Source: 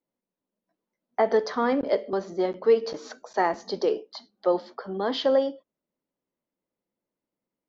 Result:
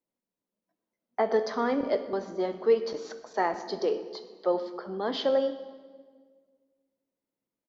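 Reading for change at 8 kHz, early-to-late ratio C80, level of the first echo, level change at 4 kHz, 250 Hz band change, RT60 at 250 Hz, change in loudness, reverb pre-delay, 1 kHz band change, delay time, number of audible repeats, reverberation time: no reading, 12.5 dB, -20.0 dB, -3.0 dB, -3.0 dB, 2.0 s, -3.0 dB, 5 ms, -3.0 dB, 123 ms, 1, 1.7 s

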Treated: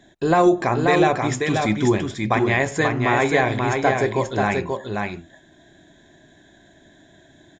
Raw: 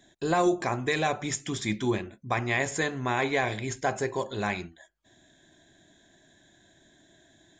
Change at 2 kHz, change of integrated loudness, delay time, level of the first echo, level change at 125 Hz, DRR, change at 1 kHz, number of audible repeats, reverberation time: +7.5 dB, +8.5 dB, 534 ms, -4.0 dB, +10.0 dB, no reverb, +9.5 dB, 1, no reverb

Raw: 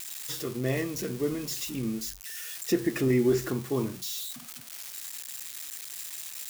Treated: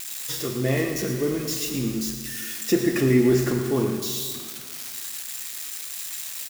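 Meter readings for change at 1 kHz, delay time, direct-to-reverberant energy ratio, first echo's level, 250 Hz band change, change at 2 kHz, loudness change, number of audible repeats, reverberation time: +6.0 dB, 114 ms, 3.5 dB, -11.0 dB, +6.0 dB, +6.5 dB, +6.0 dB, 1, 1.9 s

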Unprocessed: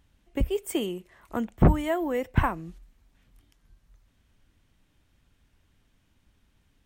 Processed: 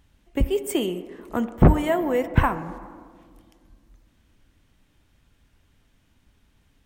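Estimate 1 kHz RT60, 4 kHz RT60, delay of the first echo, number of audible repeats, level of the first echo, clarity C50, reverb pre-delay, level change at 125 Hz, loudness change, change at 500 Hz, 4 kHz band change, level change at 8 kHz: 1.7 s, 1.0 s, no echo, no echo, no echo, 12.5 dB, 5 ms, +4.0 dB, +4.5 dB, +5.0 dB, +4.0 dB, +4.0 dB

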